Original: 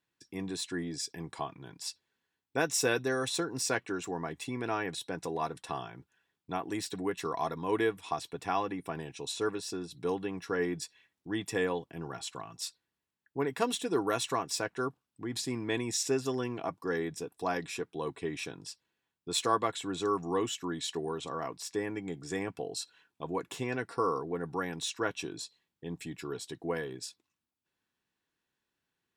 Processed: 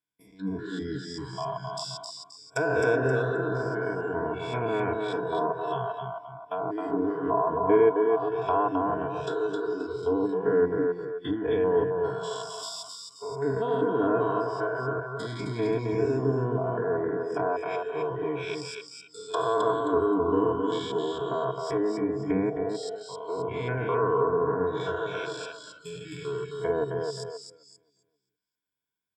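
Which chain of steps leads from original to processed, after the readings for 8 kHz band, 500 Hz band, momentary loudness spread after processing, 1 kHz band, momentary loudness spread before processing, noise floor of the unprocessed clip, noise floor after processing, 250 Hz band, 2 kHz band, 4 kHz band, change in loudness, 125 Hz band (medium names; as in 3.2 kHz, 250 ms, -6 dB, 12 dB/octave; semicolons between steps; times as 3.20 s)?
-9.0 dB, +9.0 dB, 12 LU, +6.5 dB, 11 LU, under -85 dBFS, -70 dBFS, +6.0 dB, +3.0 dB, -2.5 dB, +6.5 dB, +8.0 dB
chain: spectrogram pixelated in time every 200 ms; rippled EQ curve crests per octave 1.7, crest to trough 13 dB; low-pass that closes with the level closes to 1.3 kHz, closed at -33 dBFS; treble shelf 8.7 kHz +7.5 dB; on a send: feedback delay 264 ms, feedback 43%, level -4 dB; on the sum: spectral noise reduction 18 dB; trim +7.5 dB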